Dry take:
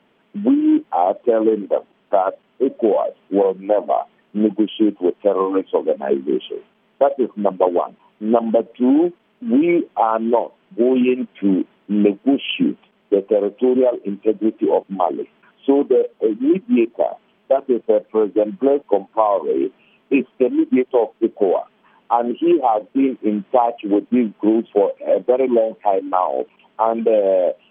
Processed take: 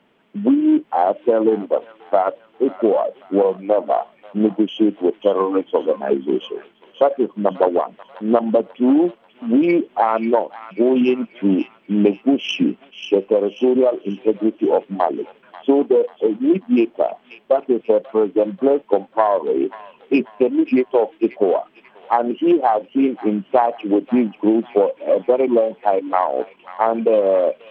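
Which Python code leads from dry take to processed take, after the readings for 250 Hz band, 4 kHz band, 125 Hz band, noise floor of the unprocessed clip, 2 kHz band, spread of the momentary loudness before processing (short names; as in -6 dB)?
0.0 dB, n/a, 0.0 dB, -60 dBFS, +1.5 dB, 7 LU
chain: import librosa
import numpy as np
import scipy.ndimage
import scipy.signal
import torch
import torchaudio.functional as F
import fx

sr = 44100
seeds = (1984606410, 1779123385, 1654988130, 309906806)

y = fx.self_delay(x, sr, depth_ms=0.068)
y = fx.echo_wet_highpass(y, sr, ms=538, feedback_pct=42, hz=1700.0, wet_db=-8)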